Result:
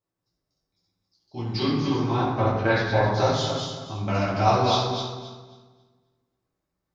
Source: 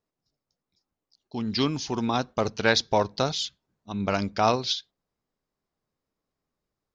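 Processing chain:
feedback delay that plays each chunk backwards 135 ms, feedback 49%, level −2.5 dB
0:01.61–0:03.10: low-pass filter 4,200 Hz → 2,100 Hz 12 dB per octave
convolution reverb RT60 1.3 s, pre-delay 4 ms, DRR −8 dB
level −8.5 dB

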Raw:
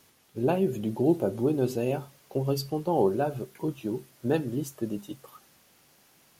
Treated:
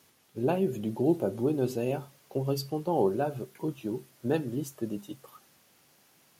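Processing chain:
high-pass filter 71 Hz
level −2 dB

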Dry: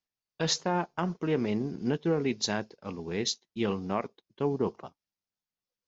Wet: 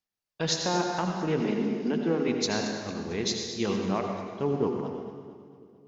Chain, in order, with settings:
0:01.40–0:02.28: Butterworth high-pass 160 Hz 72 dB per octave
echo with a time of its own for lows and highs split 500 Hz, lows 331 ms, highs 225 ms, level −14.5 dB
on a send at −2.5 dB: convolution reverb RT60 1.5 s, pre-delay 68 ms

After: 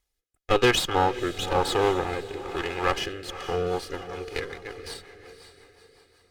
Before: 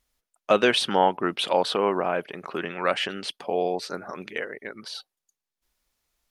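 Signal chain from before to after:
lower of the sound and its delayed copy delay 2.4 ms
feedback delay with all-pass diffusion 503 ms, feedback 44%, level −11 dB
rotating-speaker cabinet horn 1 Hz, later 5.5 Hz, at 0:03.11
level +1 dB

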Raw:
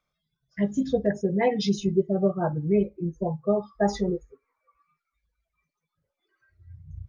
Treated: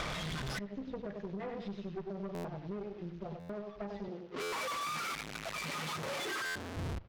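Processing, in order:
linear delta modulator 32 kbit/s, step −36.5 dBFS
low-pass filter 3,200 Hz 12 dB per octave
repeating echo 96 ms, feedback 33%, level −6 dB
gate with flip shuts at −29 dBFS, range −32 dB
automatic gain control gain up to 6.5 dB
tube saturation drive 47 dB, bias 0.7
downward compressor, threshold −52 dBFS, peak gain reduction 5.5 dB
0:04.08–0:06.77: high-pass filter 170 Hz 12 dB per octave
buffer that repeats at 0:02.34/0:03.39/0:04.42/0:06.45, samples 512, times 8
level +15.5 dB

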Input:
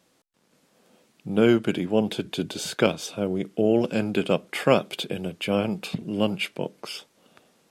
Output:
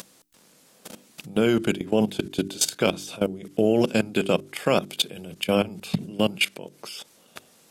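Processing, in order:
in parallel at −0.5 dB: upward compression, threshold −24 dBFS
on the sum: high-shelf EQ 4,600 Hz +10.5 dB
output level in coarse steps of 19 dB
hum removal 48.66 Hz, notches 8

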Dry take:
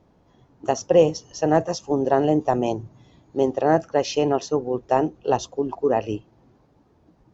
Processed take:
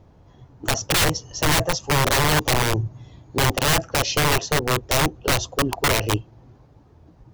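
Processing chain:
wrap-around overflow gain 18 dB
low shelf with overshoot 150 Hz +6.5 dB, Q 1.5
level +4.5 dB

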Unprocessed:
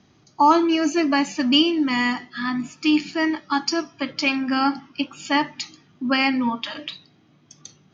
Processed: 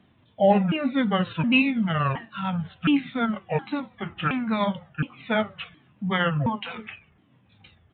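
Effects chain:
pitch shifter swept by a sawtooth −11 semitones, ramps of 718 ms
downsampling to 8,000 Hz
level −2 dB

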